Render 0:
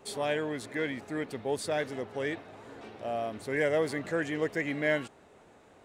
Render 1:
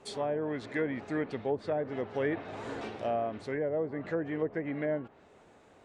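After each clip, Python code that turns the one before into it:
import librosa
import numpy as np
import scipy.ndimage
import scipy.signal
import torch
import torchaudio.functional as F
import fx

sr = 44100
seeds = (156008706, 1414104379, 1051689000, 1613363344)

y = fx.env_lowpass_down(x, sr, base_hz=770.0, full_db=-26.0)
y = scipy.signal.sosfilt(scipy.signal.butter(2, 9400.0, 'lowpass', fs=sr, output='sos'), y)
y = fx.rider(y, sr, range_db=10, speed_s=0.5)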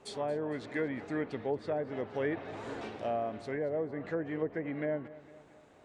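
y = fx.echo_feedback(x, sr, ms=228, feedback_pct=52, wet_db=-18.0)
y = F.gain(torch.from_numpy(y), -2.0).numpy()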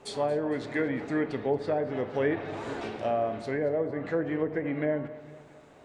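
y = fx.room_shoebox(x, sr, seeds[0], volume_m3=140.0, walls='mixed', distance_m=0.3)
y = F.gain(torch.from_numpy(y), 5.0).numpy()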